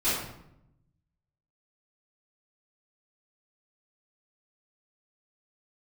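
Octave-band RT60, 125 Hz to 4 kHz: 1.5, 1.1, 0.85, 0.75, 0.65, 0.55 seconds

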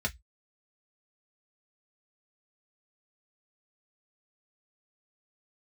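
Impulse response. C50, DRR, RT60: 25.0 dB, 0.5 dB, 0.10 s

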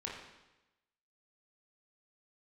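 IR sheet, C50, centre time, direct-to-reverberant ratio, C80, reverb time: 2.5 dB, 56 ms, −3.5 dB, 5.0 dB, 1.0 s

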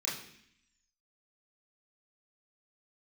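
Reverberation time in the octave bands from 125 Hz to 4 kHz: 0.85, 0.95, 0.65, 0.65, 0.90, 0.85 seconds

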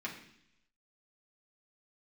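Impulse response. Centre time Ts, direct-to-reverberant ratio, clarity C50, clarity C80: 23 ms, −4.0 dB, 8.0 dB, 10.5 dB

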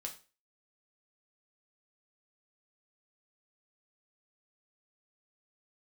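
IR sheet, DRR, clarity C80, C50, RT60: 1.5 dB, 17.0 dB, 11.5 dB, 0.35 s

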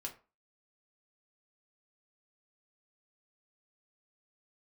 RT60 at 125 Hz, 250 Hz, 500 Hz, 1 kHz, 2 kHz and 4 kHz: 0.30, 0.30, 0.35, 0.35, 0.30, 0.20 seconds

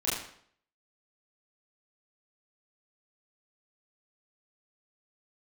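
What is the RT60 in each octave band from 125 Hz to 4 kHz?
0.60, 0.60, 0.60, 0.60, 0.55, 0.55 seconds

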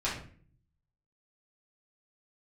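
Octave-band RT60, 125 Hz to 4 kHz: 1.0, 0.80, 0.55, 0.40, 0.45, 0.35 seconds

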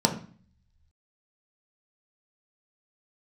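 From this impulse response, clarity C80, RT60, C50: 14.5 dB, 0.45 s, 10.5 dB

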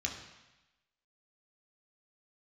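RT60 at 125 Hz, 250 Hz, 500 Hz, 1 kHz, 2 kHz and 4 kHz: 1.0, 1.0, 0.95, 1.1, 1.1, 1.1 seconds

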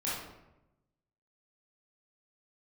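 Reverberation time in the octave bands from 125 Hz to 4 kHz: 1.3, 1.1, 1.0, 0.85, 0.75, 0.55 seconds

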